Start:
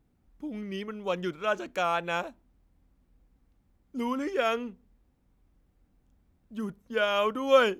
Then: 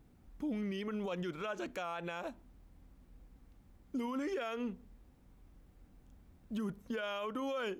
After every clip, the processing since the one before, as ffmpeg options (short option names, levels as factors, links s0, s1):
-af "acompressor=threshold=0.0178:ratio=6,alimiter=level_in=4.22:limit=0.0631:level=0:latency=1:release=54,volume=0.237,volume=2"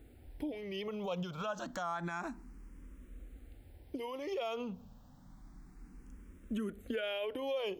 -filter_complex "[0:a]acompressor=threshold=0.01:ratio=6,asplit=2[s0][s1];[s1]afreqshift=0.29[s2];[s0][s2]amix=inputs=2:normalize=1,volume=2.82"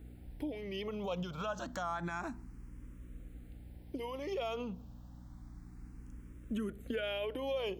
-af "aeval=exprs='val(0)+0.00282*(sin(2*PI*60*n/s)+sin(2*PI*2*60*n/s)/2+sin(2*PI*3*60*n/s)/3+sin(2*PI*4*60*n/s)/4+sin(2*PI*5*60*n/s)/5)':c=same"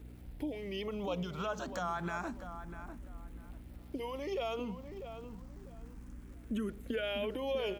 -filter_complex "[0:a]aeval=exprs='val(0)*gte(abs(val(0)),0.00106)':c=same,asplit=2[s0][s1];[s1]adelay=646,lowpass=f=2000:p=1,volume=0.335,asplit=2[s2][s3];[s3]adelay=646,lowpass=f=2000:p=1,volume=0.26,asplit=2[s4][s5];[s5]adelay=646,lowpass=f=2000:p=1,volume=0.26[s6];[s0][s2][s4][s6]amix=inputs=4:normalize=0,volume=1.12"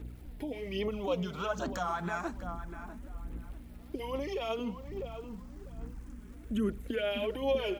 -af "aphaser=in_gain=1:out_gain=1:delay=4.8:decay=0.48:speed=1.2:type=sinusoidal,volume=1.19"